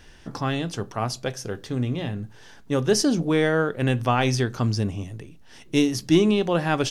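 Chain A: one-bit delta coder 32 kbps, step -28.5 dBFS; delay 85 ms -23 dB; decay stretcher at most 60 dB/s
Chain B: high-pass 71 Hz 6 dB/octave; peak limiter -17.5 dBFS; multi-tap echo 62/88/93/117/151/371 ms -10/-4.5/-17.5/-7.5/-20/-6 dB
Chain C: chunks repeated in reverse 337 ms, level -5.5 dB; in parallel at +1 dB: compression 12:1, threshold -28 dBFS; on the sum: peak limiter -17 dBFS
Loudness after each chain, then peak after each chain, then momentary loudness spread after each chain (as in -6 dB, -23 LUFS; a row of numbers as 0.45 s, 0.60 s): -23.5 LUFS, -26.0 LUFS, -26.0 LUFS; -7.0 dBFS, -11.5 dBFS, -17.0 dBFS; 14 LU, 9 LU, 4 LU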